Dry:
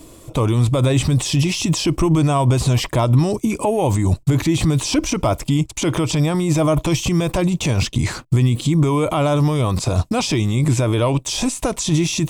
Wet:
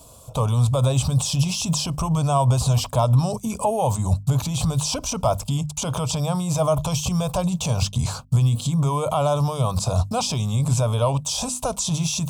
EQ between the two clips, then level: high-pass 49 Hz; hum notches 50/100/150/200/250 Hz; static phaser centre 800 Hz, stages 4; 0.0 dB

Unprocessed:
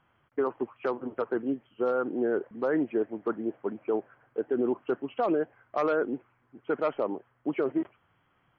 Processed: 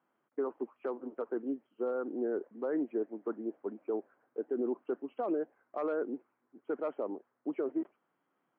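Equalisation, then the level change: high-pass 230 Hz 24 dB/octave; low-pass 1.2 kHz 6 dB/octave; bass shelf 480 Hz +5.5 dB; -8.5 dB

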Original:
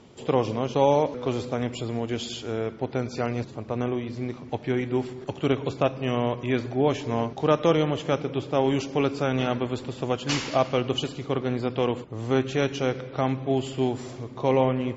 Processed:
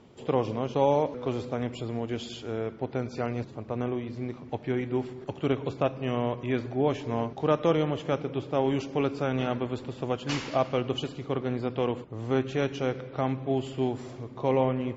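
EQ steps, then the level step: treble shelf 4 kHz -7.5 dB; -3.0 dB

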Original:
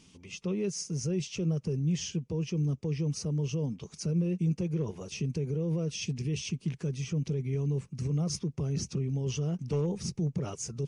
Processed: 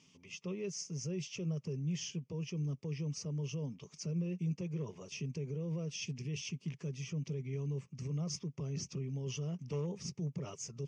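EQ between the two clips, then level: cabinet simulation 160–6500 Hz, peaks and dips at 210 Hz -7 dB, 320 Hz -9 dB, 480 Hz -5 dB, 770 Hz -8 dB, 1.5 kHz -9 dB, 4 kHz -9 dB; -2.5 dB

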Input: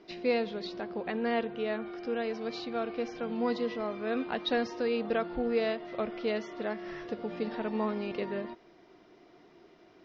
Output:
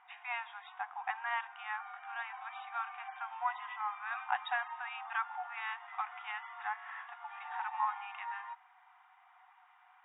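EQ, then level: brick-wall FIR band-pass 730–3800 Hz; distance through air 410 m; treble shelf 2.5 kHz -12 dB; +9.0 dB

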